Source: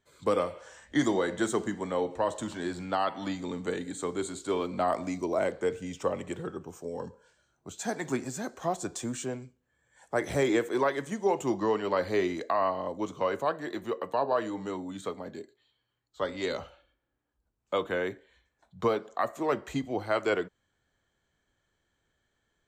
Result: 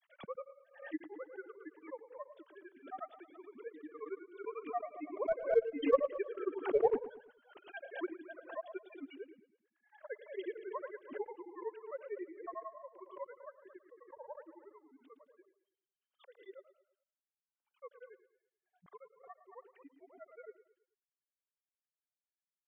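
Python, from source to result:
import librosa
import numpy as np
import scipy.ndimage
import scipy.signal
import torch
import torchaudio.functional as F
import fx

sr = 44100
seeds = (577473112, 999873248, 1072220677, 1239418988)

p1 = fx.sine_speech(x, sr)
p2 = fx.doppler_pass(p1, sr, speed_mps=6, closest_m=1.3, pass_at_s=6.89)
p3 = fx.schmitt(p2, sr, flips_db=-36.5)
p4 = p2 + (p3 * 10.0 ** (-11.5 / 20.0))
p5 = fx.env_lowpass_down(p4, sr, base_hz=390.0, full_db=-28.0)
p6 = fx.granulator(p5, sr, seeds[0], grain_ms=72.0, per_s=11.0, spray_ms=22.0, spread_st=0)
p7 = p6 + fx.echo_feedback(p6, sr, ms=109, feedback_pct=41, wet_db=-14.5, dry=0)
p8 = fx.pre_swell(p7, sr, db_per_s=130.0)
y = p8 * 10.0 ** (14.0 / 20.0)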